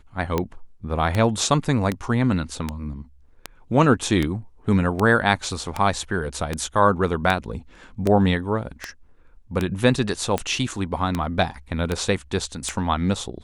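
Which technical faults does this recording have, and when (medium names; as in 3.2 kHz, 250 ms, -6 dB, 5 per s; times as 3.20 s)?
tick 78 rpm -9 dBFS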